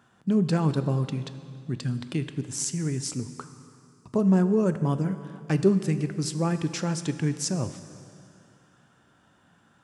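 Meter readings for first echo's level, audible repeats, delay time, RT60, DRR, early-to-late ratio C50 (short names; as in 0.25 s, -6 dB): none, none, none, 2.5 s, 10.5 dB, 11.5 dB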